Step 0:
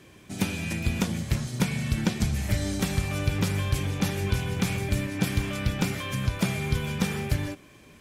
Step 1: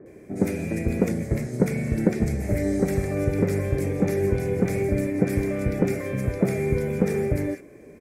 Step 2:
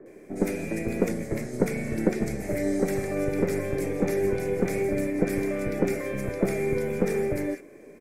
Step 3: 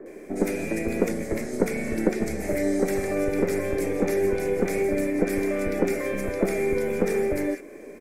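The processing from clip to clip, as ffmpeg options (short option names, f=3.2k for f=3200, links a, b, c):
-filter_complex "[0:a]firequalizer=gain_entry='entry(110,0);entry(440,14);entry(970,-5);entry(2100,4);entry(3000,-20);entry(5000,-9);entry(8200,-4)':delay=0.05:min_phase=1,acrossover=split=1500[a][b];[b]adelay=60[c];[a][c]amix=inputs=2:normalize=0"
-filter_complex "[0:a]highpass=f=140:p=1,acrossover=split=210[a][b];[a]aeval=exprs='max(val(0),0)':c=same[c];[c][b]amix=inputs=2:normalize=0"
-filter_complex "[0:a]asplit=2[a][b];[b]acompressor=threshold=-33dB:ratio=6,volume=1dB[c];[a][c]amix=inputs=2:normalize=0,equalizer=f=130:w=2.5:g=-13"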